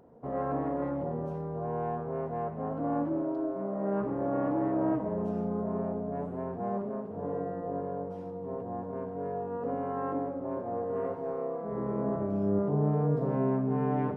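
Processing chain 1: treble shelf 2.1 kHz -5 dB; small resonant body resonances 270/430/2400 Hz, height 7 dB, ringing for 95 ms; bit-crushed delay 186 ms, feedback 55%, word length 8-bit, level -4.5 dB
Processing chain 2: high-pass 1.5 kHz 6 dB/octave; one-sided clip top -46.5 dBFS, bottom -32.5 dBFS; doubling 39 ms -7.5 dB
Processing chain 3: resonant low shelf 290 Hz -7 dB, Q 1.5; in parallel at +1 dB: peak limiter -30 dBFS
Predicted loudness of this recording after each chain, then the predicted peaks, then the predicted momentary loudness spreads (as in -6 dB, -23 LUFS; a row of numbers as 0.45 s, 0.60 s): -29.0 LUFS, -45.5 LUFS, -29.0 LUFS; -12.5 dBFS, -30.0 dBFS, -16.5 dBFS; 8 LU, 6 LU, 4 LU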